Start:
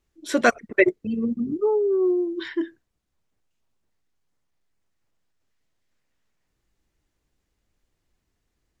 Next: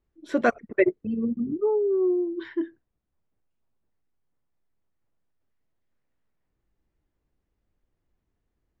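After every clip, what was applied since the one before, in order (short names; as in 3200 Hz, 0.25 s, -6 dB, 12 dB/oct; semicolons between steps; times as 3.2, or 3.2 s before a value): LPF 1100 Hz 6 dB/oct; gain -1.5 dB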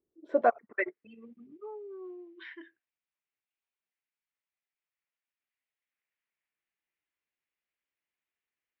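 band-pass sweep 360 Hz -> 2400 Hz, 0.06–1.09; gain +2.5 dB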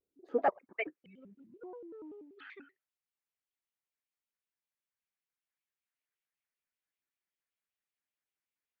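shaped vibrato square 5.2 Hz, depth 250 cents; gain -5 dB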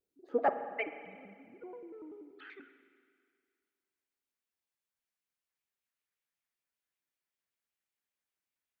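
spring tank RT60 2.1 s, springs 40/51 ms, chirp 35 ms, DRR 9.5 dB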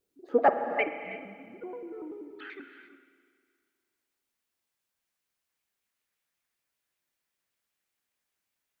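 non-linear reverb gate 0.37 s rising, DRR 10 dB; gain +7 dB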